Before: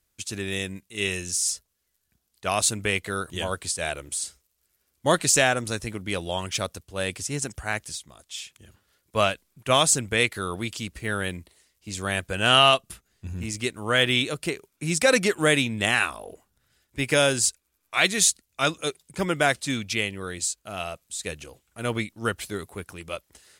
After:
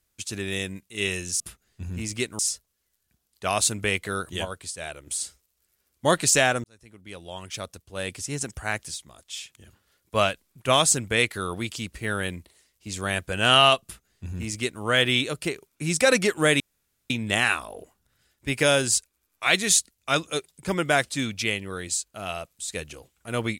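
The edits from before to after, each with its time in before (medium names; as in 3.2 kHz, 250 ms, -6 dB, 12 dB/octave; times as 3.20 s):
3.46–4.08 s: gain -6.5 dB
5.65–7.63 s: fade in linear
12.84–13.83 s: copy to 1.40 s
15.61 s: insert room tone 0.50 s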